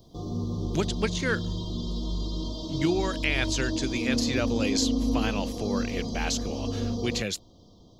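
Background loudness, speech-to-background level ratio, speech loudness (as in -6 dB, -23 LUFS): -31.0 LUFS, 1.0 dB, -30.0 LUFS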